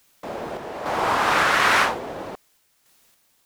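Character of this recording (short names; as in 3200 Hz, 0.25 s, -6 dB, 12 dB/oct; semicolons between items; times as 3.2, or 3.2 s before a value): a quantiser's noise floor 10-bit, dither triangular; random-step tremolo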